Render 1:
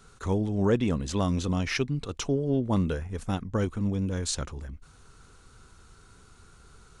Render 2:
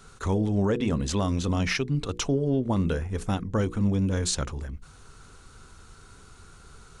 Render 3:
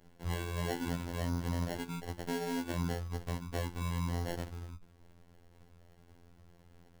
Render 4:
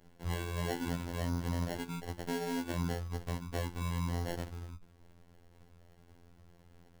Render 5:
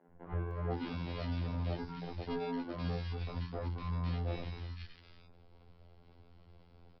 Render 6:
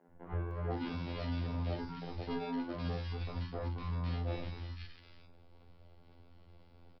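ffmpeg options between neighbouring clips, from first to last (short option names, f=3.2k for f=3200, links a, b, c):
-af "bandreject=f=60:t=h:w=6,bandreject=f=120:t=h:w=6,bandreject=f=180:t=h:w=6,bandreject=f=240:t=h:w=6,bandreject=f=300:t=h:w=6,bandreject=f=360:t=h:w=6,bandreject=f=420:t=h:w=6,bandreject=f=480:t=h:w=6,alimiter=limit=-21dB:level=0:latency=1:release=141,volume=4.5dB"
-af "acrusher=samples=36:mix=1:aa=0.000001,afftfilt=real='hypot(re,im)*cos(PI*b)':imag='0':win_size=2048:overlap=0.75,volume=-7dB"
-af anull
-filter_complex "[0:a]aresample=11025,aeval=exprs='clip(val(0),-1,0.0376)':c=same,aresample=44100,acrossover=split=190|1700[a][b][c];[a]adelay=80[d];[c]adelay=510[e];[d][b][e]amix=inputs=3:normalize=0,volume=1dB"
-filter_complex "[0:a]asplit=2[a][b];[b]adelay=43,volume=-9dB[c];[a][c]amix=inputs=2:normalize=0"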